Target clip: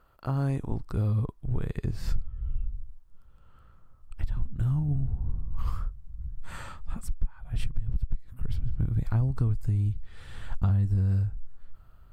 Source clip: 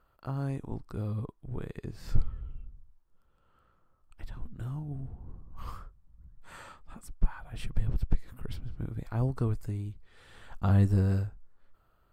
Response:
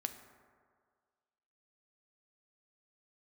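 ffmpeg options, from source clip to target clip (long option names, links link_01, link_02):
-af "asubboost=boost=3.5:cutoff=180,acompressor=threshold=-27dB:ratio=12,volume=5.5dB"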